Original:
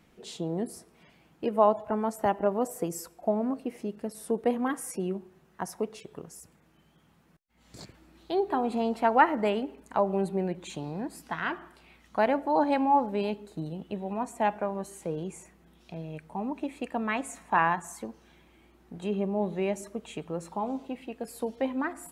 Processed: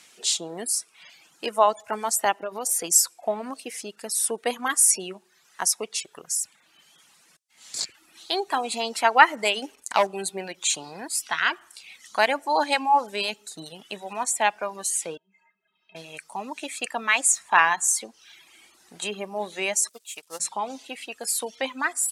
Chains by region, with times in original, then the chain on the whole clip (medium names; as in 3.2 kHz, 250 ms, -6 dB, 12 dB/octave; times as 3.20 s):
2.37–2.84 s: band-stop 7.8 kHz, Q 7.3 + compression 5:1, threshold -26 dBFS
9.62–10.07 s: expander -56 dBFS + waveshaping leveller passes 1
15.17–15.95 s: low-pass 2.7 kHz 24 dB/octave + compression 12:1, threshold -42 dBFS + inharmonic resonator 190 Hz, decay 0.3 s, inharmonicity 0.03
19.89–20.40 s: zero-crossing glitches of -40.5 dBFS + bass shelf 290 Hz -11.5 dB + upward expansion 2.5:1, over -46 dBFS
whole clip: frequency weighting ITU-R 468; reverb removal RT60 0.72 s; treble shelf 7.2 kHz +12 dB; trim +5.5 dB